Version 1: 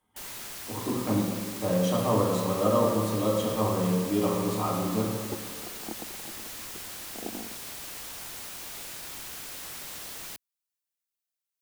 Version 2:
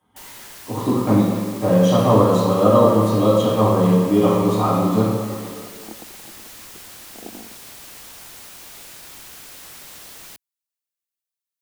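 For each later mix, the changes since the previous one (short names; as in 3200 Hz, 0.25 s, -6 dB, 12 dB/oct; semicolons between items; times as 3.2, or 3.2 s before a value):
speech: send +11.0 dB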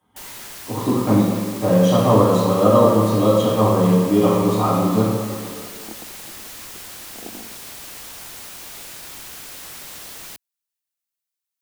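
first sound +3.5 dB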